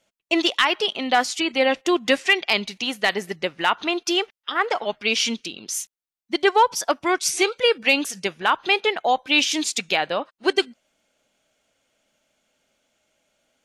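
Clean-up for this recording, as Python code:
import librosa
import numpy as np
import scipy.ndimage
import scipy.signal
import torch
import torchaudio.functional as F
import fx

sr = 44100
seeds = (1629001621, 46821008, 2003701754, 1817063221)

y = fx.fix_declip(x, sr, threshold_db=-7.5)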